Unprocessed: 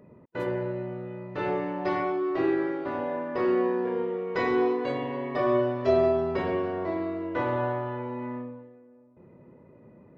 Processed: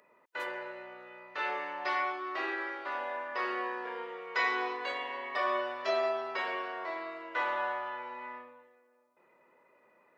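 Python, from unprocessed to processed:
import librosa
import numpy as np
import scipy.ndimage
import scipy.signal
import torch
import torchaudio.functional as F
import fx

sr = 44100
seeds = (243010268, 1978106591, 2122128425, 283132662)

y = scipy.signal.sosfilt(scipy.signal.butter(2, 1200.0, 'highpass', fs=sr, output='sos'), x)
y = y * 10.0 ** (4.0 / 20.0)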